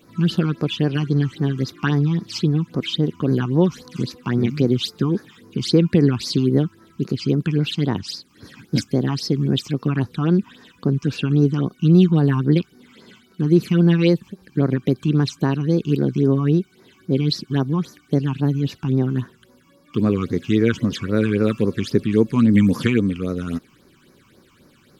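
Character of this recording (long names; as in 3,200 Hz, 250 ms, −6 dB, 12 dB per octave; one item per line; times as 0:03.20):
phaser sweep stages 8, 3.7 Hz, lowest notch 500–3,100 Hz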